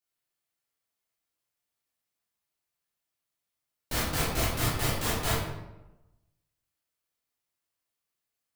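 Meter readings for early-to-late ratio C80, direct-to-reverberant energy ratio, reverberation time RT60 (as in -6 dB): 4.5 dB, -8.5 dB, 1.0 s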